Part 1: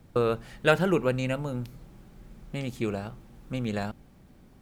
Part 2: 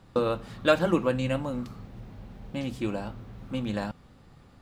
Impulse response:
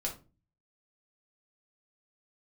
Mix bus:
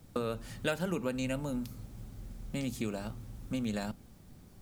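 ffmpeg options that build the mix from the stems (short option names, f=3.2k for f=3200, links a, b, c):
-filter_complex "[0:a]highpass=330,volume=-4dB[a];[1:a]volume=-16.5dB,asplit=2[b][c];[c]volume=-12dB[d];[2:a]atrim=start_sample=2205[e];[d][e]afir=irnorm=-1:irlink=0[f];[a][b][f]amix=inputs=3:normalize=0,bass=f=250:g=14,treble=f=4k:g=10,acompressor=threshold=-31dB:ratio=3"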